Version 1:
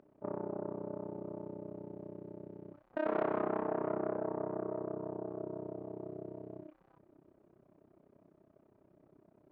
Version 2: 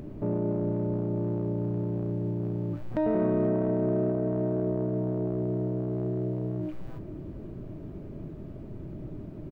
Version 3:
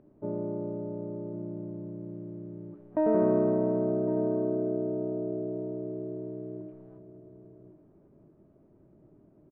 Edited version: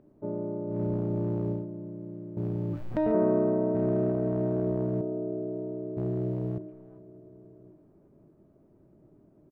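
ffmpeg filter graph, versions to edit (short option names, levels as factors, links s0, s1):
-filter_complex "[1:a]asplit=4[s0][s1][s2][s3];[2:a]asplit=5[s4][s5][s6][s7][s8];[s4]atrim=end=0.82[s9];[s0]atrim=start=0.66:end=1.67[s10];[s5]atrim=start=1.51:end=2.372[s11];[s1]atrim=start=2.368:end=3.122[s12];[s6]atrim=start=3.118:end=3.752[s13];[s2]atrim=start=3.748:end=5.012[s14];[s7]atrim=start=5.008:end=5.972[s15];[s3]atrim=start=5.968:end=6.582[s16];[s8]atrim=start=6.578[s17];[s9][s10]acrossfade=d=0.16:c1=tri:c2=tri[s18];[s18][s11]acrossfade=d=0.16:c1=tri:c2=tri[s19];[s19][s12]acrossfade=d=0.004:c1=hsin:c2=hsin[s20];[s20][s13]acrossfade=d=0.004:c1=hsin:c2=hsin[s21];[s21][s14]acrossfade=d=0.004:c1=hsin:c2=hsin[s22];[s22][s15]acrossfade=d=0.004:c1=hsin:c2=hsin[s23];[s23][s16]acrossfade=d=0.004:c1=hsin:c2=hsin[s24];[s24][s17]acrossfade=d=0.004:c1=hsin:c2=hsin"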